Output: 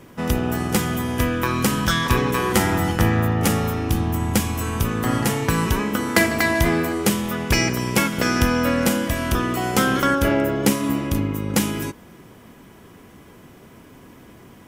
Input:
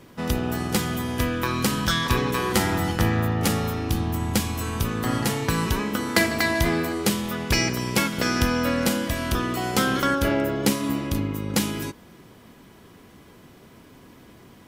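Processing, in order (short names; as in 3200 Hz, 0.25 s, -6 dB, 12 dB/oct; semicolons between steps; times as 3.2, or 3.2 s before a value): bell 4200 Hz -6 dB 0.59 oct; gain +3.5 dB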